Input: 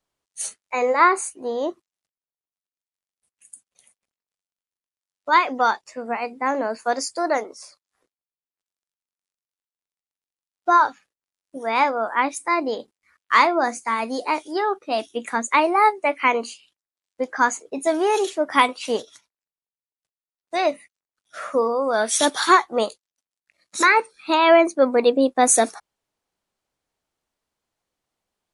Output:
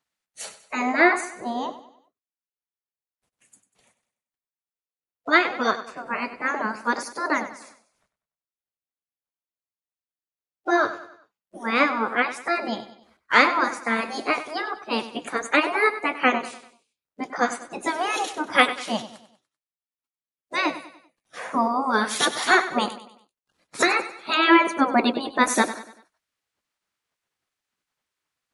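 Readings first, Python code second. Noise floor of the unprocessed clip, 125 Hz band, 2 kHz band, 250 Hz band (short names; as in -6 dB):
under -85 dBFS, n/a, +1.5 dB, +0.5 dB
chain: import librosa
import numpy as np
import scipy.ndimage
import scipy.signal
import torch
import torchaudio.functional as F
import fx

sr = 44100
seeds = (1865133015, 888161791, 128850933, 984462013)

y = fx.spec_gate(x, sr, threshold_db=-10, keep='weak')
y = fx.high_shelf(y, sr, hz=2800.0, db=-10.0)
y = fx.echo_feedback(y, sr, ms=97, feedback_pct=43, wet_db=-13.5)
y = y * 10.0 ** (8.0 / 20.0)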